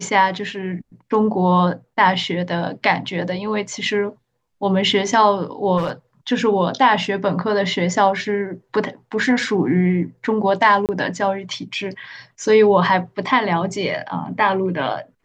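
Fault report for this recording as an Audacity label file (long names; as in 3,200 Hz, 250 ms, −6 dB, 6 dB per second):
5.770000	5.900000	clipping −16 dBFS
10.860000	10.890000	drop-out 28 ms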